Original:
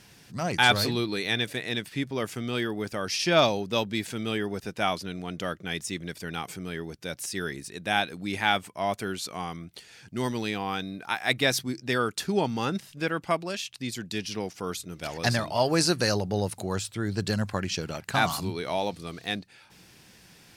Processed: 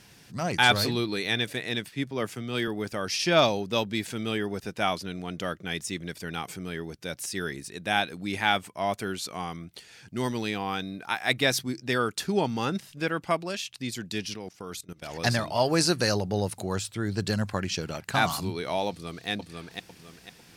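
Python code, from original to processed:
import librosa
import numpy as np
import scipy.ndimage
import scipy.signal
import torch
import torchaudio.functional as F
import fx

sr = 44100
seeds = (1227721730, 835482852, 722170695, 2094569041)

y = fx.band_widen(x, sr, depth_pct=70, at=(1.91, 2.68))
y = fx.level_steps(y, sr, step_db=19, at=(14.33, 15.12), fade=0.02)
y = fx.echo_throw(y, sr, start_s=18.89, length_s=0.4, ms=500, feedback_pct=35, wet_db=-3.0)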